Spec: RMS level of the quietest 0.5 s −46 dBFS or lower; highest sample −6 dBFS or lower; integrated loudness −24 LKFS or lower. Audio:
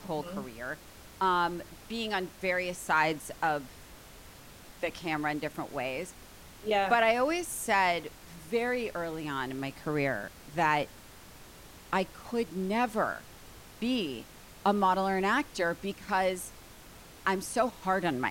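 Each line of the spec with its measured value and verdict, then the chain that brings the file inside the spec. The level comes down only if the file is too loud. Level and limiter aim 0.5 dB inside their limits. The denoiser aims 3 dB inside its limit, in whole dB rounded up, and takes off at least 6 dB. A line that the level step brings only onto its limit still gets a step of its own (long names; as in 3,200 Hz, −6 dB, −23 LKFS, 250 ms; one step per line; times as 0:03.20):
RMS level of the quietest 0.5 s −51 dBFS: in spec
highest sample −13.5 dBFS: in spec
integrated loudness −31.0 LKFS: in spec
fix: no processing needed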